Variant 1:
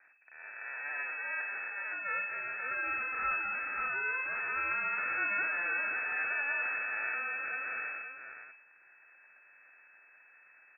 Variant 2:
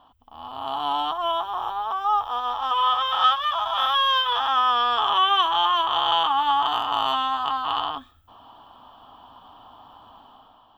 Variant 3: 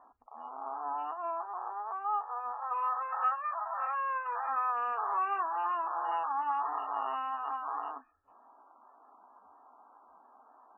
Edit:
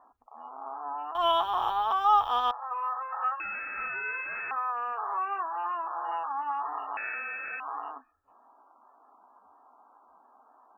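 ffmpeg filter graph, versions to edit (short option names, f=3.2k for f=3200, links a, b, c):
-filter_complex "[0:a]asplit=2[a][b];[2:a]asplit=4[c][d][e][f];[c]atrim=end=1.152[g];[1:a]atrim=start=1.148:end=2.512[h];[d]atrim=start=2.508:end=3.402[i];[a]atrim=start=3.398:end=4.512[j];[e]atrim=start=4.508:end=6.972[k];[b]atrim=start=6.968:end=7.602[l];[f]atrim=start=7.598[m];[g][h]acrossfade=d=0.004:c1=hsin:c2=hsin[n];[n][i]acrossfade=d=0.004:c1=hsin:c2=hsin[o];[o][j]acrossfade=d=0.004:c1=hsin:c2=hsin[p];[p][k]acrossfade=d=0.004:c1=hsin:c2=hsin[q];[q][l]acrossfade=d=0.004:c1=hsin:c2=hsin[r];[r][m]acrossfade=d=0.004:c1=hsin:c2=hsin"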